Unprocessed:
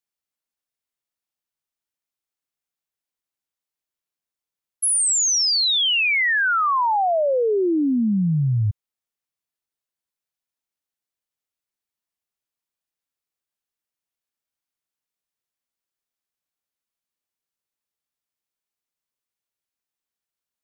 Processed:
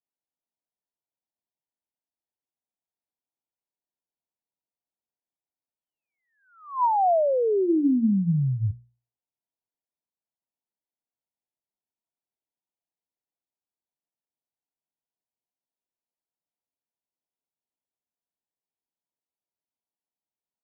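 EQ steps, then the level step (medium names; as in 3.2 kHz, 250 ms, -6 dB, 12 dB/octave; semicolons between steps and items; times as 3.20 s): rippled Chebyshev low-pass 1 kHz, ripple 3 dB; bass shelf 61 Hz -9.5 dB; hum notches 60/120/180/240/300/360 Hz; 0.0 dB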